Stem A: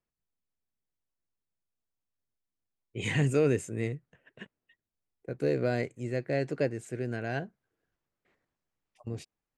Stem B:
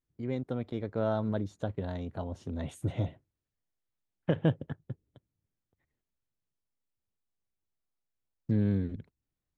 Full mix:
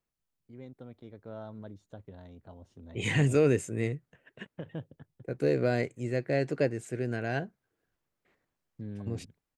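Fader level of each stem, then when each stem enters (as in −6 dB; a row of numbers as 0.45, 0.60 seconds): +1.5, −13.0 decibels; 0.00, 0.30 seconds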